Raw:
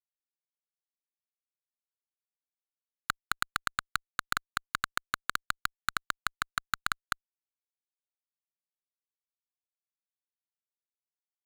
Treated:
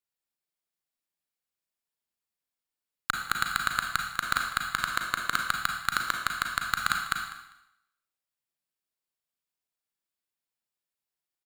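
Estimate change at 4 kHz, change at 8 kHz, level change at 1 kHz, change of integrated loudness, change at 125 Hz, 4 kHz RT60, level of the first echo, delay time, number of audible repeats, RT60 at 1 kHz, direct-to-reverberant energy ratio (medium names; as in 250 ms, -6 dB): +5.0 dB, +4.5 dB, +5.0 dB, +5.5 dB, +5.0 dB, 0.85 s, -17.0 dB, 199 ms, 2, 0.85 s, 2.0 dB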